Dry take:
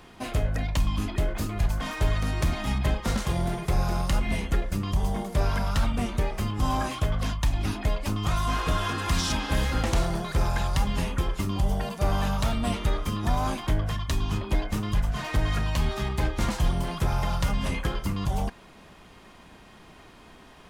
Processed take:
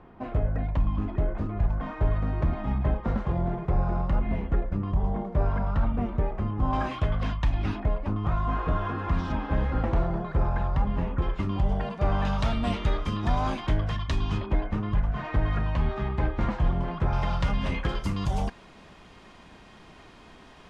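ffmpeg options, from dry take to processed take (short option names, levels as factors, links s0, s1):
-af "asetnsamples=n=441:p=0,asendcmd='6.73 lowpass f 2700;7.8 lowpass f 1300;11.22 lowpass f 2400;12.25 lowpass f 4100;14.46 lowpass f 1800;17.13 lowpass f 3600;17.89 lowpass f 7200',lowpass=1200"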